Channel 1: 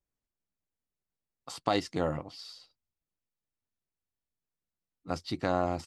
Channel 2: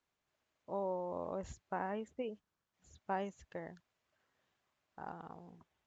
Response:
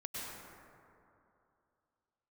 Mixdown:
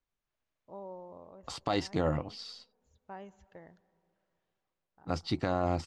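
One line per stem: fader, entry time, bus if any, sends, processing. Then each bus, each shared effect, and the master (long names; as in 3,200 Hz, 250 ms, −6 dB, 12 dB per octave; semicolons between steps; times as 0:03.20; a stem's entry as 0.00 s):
+2.0 dB, 0.00 s, no send, noise gate −53 dBFS, range −10 dB
−7.5 dB, 0.00 s, send −21 dB, automatic ducking −8 dB, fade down 0.45 s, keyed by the first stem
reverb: on, RT60 2.7 s, pre-delay 92 ms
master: low-pass filter 6,900 Hz 12 dB per octave; low-shelf EQ 67 Hz +11 dB; brickwall limiter −18 dBFS, peak gain reduction 8.5 dB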